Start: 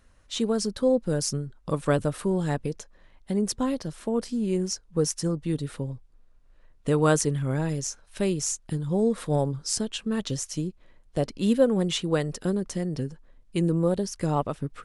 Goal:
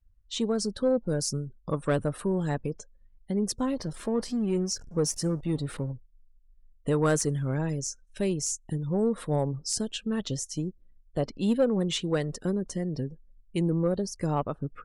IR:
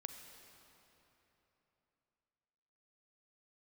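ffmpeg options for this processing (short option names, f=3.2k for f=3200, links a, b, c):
-filter_complex "[0:a]asettb=1/sr,asplit=3[a][b][c];[a]atrim=end=3.774[d];[b]atrim=start=3.77:end=5.92,asetpts=PTS-STARTPTS,afade=t=in:d=0.004:c=qsin,afade=t=out:st=2.146:d=0.004:c=qsin,aeval=exprs='val(0)+0.5*0.0126*sgn(val(0))':c=same[e];[c]atrim=start=5.916[f];[d][e]acrossfade=d=0.004:c1=hsin:c2=qsin[g];[g][f]acrossfade=d=0.004:c1=qsin:c2=hsin,afftdn=nr=29:nf=-47,asoftclip=type=tanh:threshold=-13.5dB,volume=-1.5dB"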